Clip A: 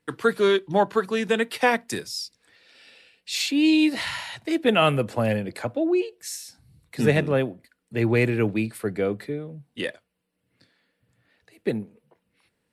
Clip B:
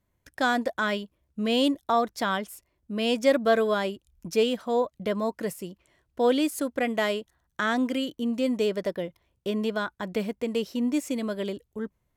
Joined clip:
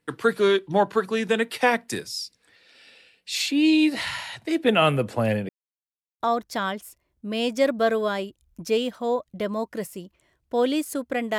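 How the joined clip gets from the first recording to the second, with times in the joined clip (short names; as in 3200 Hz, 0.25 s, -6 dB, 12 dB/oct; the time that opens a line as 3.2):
clip A
5.49–6.2 mute
6.2 switch to clip B from 1.86 s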